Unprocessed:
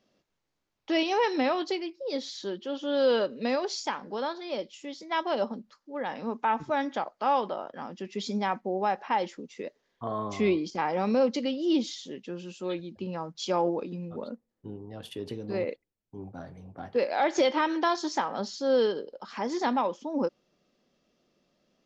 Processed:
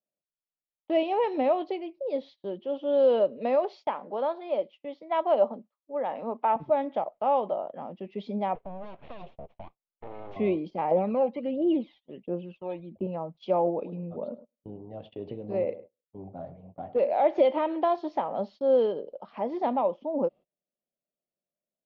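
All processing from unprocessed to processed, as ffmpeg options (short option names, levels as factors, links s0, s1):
-filter_complex "[0:a]asettb=1/sr,asplit=3[s0][s1][s2];[s0]atrim=end=3.384[s3];[s1]atrim=start=3.38:end=6.56,asetpts=PTS-STARTPTS,afade=t=in:d=0.004:c=qsin,afade=t=out:st=3.176:d=0.004:c=qsin,highpass=210,equalizer=f=1300:w=1:g=5[s4];[s2]atrim=start=6.556[s5];[s3][s4]acrossfade=d=0.004:c1=hsin:c2=qsin[s6];[s6][s5]acrossfade=d=0.004:c1=qsin:c2=hsin,asettb=1/sr,asplit=3[s7][s8][s9];[s7]atrim=end=8.554[s10];[s8]atrim=start=8.55:end=10.36,asetpts=PTS-STARTPTS,afade=t=in:d=0.004:c=qsin,afade=t=out:st=1.806:d=0.004:c=qsin,acrossover=split=220|3000[s11][s12][s13];[s12]acompressor=threshold=0.0141:ratio=6:attack=3.2:release=140:knee=2.83:detection=peak[s14];[s11][s14][s13]amix=inputs=3:normalize=0,aeval=exprs='abs(val(0))':c=same,bandreject=f=4800:w=20[s15];[s9]atrim=start=10.356[s16];[s10][s15]acrossfade=d=0.004:c1=hsin:c2=qsin[s17];[s17][s16]acrossfade=d=0.004:c1=qsin:c2=hsin,asettb=1/sr,asplit=3[s18][s19][s20];[s18]atrim=end=10.914[s21];[s19]atrim=start=10.91:end=13.07,asetpts=PTS-STARTPTS,afade=t=in:d=0.004:c=qsin,afade=t=out:st=2.156:d=0.004:c=qsin,acrossover=split=2700[s22][s23];[s23]acompressor=threshold=0.00501:ratio=4:attack=1:release=60[s24];[s22][s24]amix=inputs=2:normalize=0,bass=f=250:g=-5,treble=f=4000:g=-12,aphaser=in_gain=1:out_gain=1:delay=1.3:decay=0.62:speed=1.4:type=triangular[s25];[s20]atrim=start=13.066[s26];[s21][s25]acrossfade=d=0.004:c1=hsin:c2=qsin[s27];[s27][s26]acrossfade=d=0.004:c1=qsin:c2=hsin,asettb=1/sr,asplit=3[s28][s29][s30];[s28]atrim=end=13.754[s31];[s29]atrim=start=13.75:end=17.15,asetpts=PTS-STARTPTS,afade=t=in:d=0.004:c=qsin,afade=t=out:st=3.396:d=0.004:c=qsin,asplit=2[s32][s33];[s33]adelay=103,lowpass=f=1600:p=1,volume=0.188,asplit=2[s34][s35];[s35]adelay=103,lowpass=f=1600:p=1,volume=0.32,asplit=2[s36][s37];[s37]adelay=103,lowpass=f=1600:p=1,volume=0.32[s38];[s32][s34][s36][s38]amix=inputs=4:normalize=0,atrim=end_sample=149940,volume=10,asoftclip=hard,volume=0.1[s39];[s30]atrim=start=17.146[s40];[s31][s39]acrossfade=d=0.004:c1=hsin:c2=qsin[s41];[s41][s40]acrossfade=d=0.004:c1=qsin:c2=hsin,lowpass=f=2900:w=0.5412,lowpass=f=2900:w=1.3066,agate=range=0.0501:threshold=0.00501:ratio=16:detection=peak,equalizer=f=160:t=o:w=0.67:g=4,equalizer=f=630:t=o:w=0.67:g=11,equalizer=f=1600:t=o:w=0.67:g=-11,volume=0.668"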